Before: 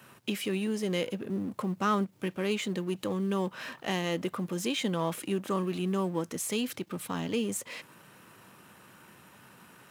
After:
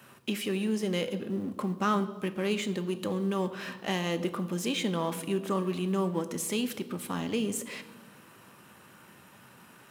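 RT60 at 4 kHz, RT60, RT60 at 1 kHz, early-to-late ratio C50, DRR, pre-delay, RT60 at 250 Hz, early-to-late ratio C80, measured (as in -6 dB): 1.0 s, 1.3 s, 1.1 s, 13.5 dB, 10.0 dB, 4 ms, 1.7 s, 15.5 dB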